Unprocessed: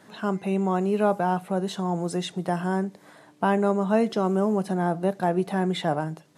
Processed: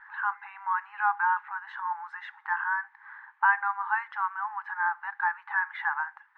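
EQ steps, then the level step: brick-wall FIR high-pass 800 Hz; synth low-pass 1700 Hz, resonance Q 5.7; tilt -4.5 dB/oct; 0.0 dB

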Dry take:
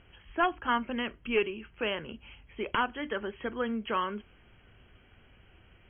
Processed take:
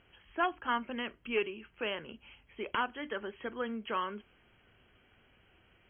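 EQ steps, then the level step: low shelf 130 Hz -9.5 dB; -3.5 dB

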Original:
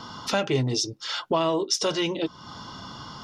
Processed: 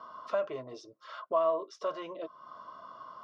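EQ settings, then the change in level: double band-pass 830 Hz, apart 0.77 oct; 0.0 dB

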